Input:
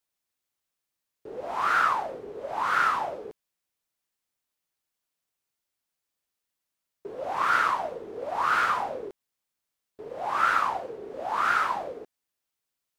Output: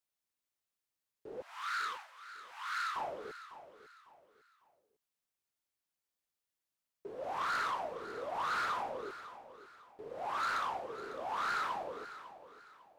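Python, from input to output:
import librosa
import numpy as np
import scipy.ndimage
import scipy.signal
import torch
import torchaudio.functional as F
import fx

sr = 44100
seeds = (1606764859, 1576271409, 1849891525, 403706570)

p1 = 10.0 ** (-24.0 / 20.0) * np.tanh(x / 10.0 ** (-24.0 / 20.0))
p2 = fx.highpass(p1, sr, hz=1300.0, slope=24, at=(1.42, 2.96))
p3 = p2 + fx.echo_feedback(p2, sr, ms=551, feedback_pct=33, wet_db=-14.0, dry=0)
y = F.gain(torch.from_numpy(p3), -6.5).numpy()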